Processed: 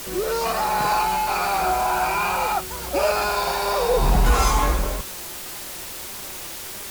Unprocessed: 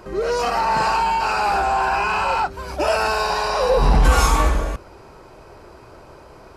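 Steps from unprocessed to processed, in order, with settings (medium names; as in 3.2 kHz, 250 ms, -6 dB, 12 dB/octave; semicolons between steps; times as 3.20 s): added noise white -32 dBFS; flange 1.7 Hz, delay 4.6 ms, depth 1.1 ms, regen +71%; tape speed -5%; trim +2 dB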